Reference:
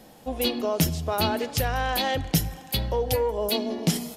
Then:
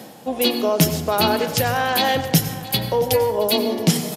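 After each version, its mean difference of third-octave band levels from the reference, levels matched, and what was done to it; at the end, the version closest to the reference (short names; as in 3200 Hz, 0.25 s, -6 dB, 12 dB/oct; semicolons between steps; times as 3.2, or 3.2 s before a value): 3.5 dB: HPF 110 Hz 24 dB/oct; reverse; upward compressor, threshold -32 dBFS; reverse; echo 0.671 s -19 dB; plate-style reverb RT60 0.81 s, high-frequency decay 0.55×, pre-delay 80 ms, DRR 9.5 dB; gain +6.5 dB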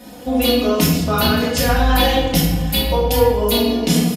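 6.0 dB: HPF 45 Hz; comb 4.1 ms, depth 80%; in parallel at +3 dB: compressor, threshold -28 dBFS, peak gain reduction 11.5 dB; on the sum: shoebox room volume 480 m³, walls mixed, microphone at 2.6 m; gain -3 dB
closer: first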